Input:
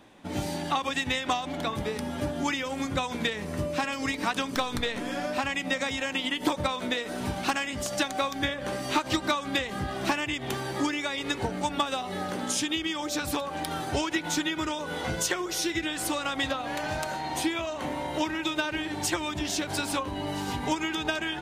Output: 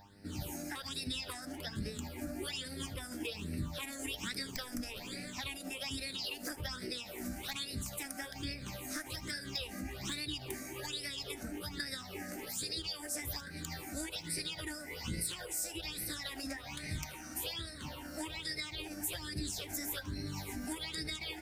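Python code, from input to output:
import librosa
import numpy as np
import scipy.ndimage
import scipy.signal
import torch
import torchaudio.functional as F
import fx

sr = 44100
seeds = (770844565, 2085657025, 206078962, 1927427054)

p1 = fx.tone_stack(x, sr, knobs='6-0-2')
p2 = fx.hum_notches(p1, sr, base_hz=60, count=2)
p3 = fx.over_compress(p2, sr, threshold_db=-49.0, ratio=-1.0)
p4 = p2 + F.gain(torch.from_numpy(p3), -1.0).numpy()
p5 = fx.dmg_buzz(p4, sr, base_hz=100.0, harmonics=9, level_db=-64.0, tilt_db=-1, odd_only=False)
p6 = fx.formant_shift(p5, sr, semitones=6)
p7 = fx.phaser_stages(p6, sr, stages=8, low_hz=120.0, high_hz=1000.0, hz=1.2, feedback_pct=25)
p8 = p7 + fx.echo_single(p7, sr, ms=77, db=-22.0, dry=0)
y = F.gain(torch.from_numpy(p8), 6.5).numpy()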